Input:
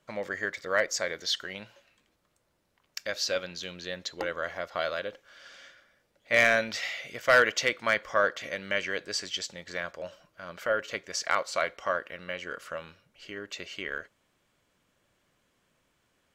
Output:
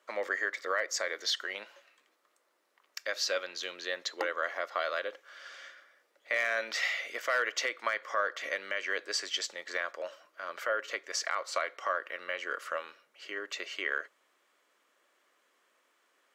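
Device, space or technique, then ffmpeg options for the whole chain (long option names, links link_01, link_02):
laptop speaker: -af "highpass=frequency=330:width=0.5412,highpass=frequency=330:width=1.3066,equalizer=frequency=1200:width_type=o:width=0.42:gain=6,equalizer=frequency=1900:width_type=o:width=0.35:gain=4.5,alimiter=limit=-19dB:level=0:latency=1:release=241,highpass=130"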